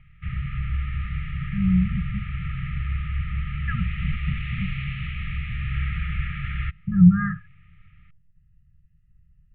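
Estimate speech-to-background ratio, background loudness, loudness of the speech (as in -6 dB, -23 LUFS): 6.0 dB, -30.0 LUFS, -24.0 LUFS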